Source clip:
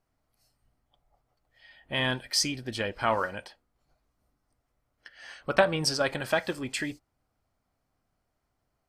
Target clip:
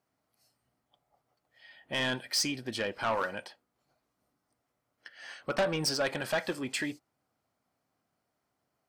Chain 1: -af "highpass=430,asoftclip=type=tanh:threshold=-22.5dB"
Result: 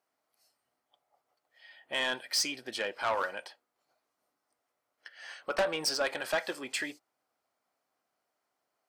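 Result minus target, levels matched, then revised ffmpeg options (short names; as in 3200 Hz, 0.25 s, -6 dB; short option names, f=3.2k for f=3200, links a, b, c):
125 Hz band -13.5 dB
-af "highpass=150,asoftclip=type=tanh:threshold=-22.5dB"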